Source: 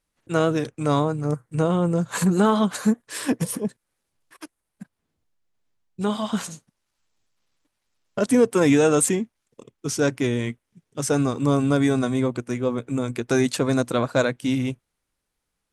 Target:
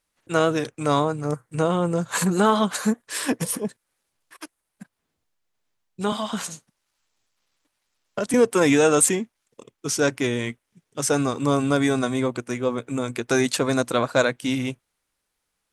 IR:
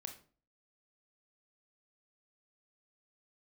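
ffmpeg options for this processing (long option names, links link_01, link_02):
-filter_complex "[0:a]asettb=1/sr,asplit=3[link_01][link_02][link_03];[link_01]atrim=end=6.124[link_04];[link_02]atrim=start=6.12:end=8.34,asetpts=PTS-STARTPTS,afade=type=in:duration=0.004:curve=qsin,afade=type=out:start_time=2.216:duration=0.004:curve=qsin,acrossover=split=160[link_05][link_06];[link_06]acompressor=threshold=-25dB:ratio=3[link_07];[link_05][link_07]amix=inputs=2:normalize=0[link_08];[link_03]atrim=start=8.336[link_09];[link_04][link_08]acrossfade=duration=0.004:curve1=hsin:curve2=qsin[link_10];[link_10][link_09]acrossfade=duration=0.004:curve1=qsin:curve2=hsin,lowshelf=frequency=370:gain=-8,volume=3.5dB"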